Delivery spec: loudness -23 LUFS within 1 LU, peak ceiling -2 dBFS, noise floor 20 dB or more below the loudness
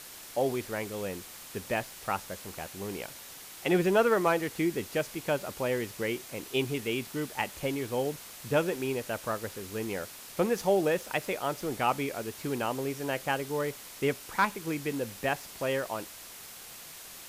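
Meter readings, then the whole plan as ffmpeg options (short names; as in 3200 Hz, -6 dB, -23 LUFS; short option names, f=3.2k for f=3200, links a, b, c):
noise floor -47 dBFS; noise floor target -52 dBFS; loudness -31.5 LUFS; peak -14.0 dBFS; loudness target -23.0 LUFS
-> -af "afftdn=nr=6:nf=-47"
-af "volume=8.5dB"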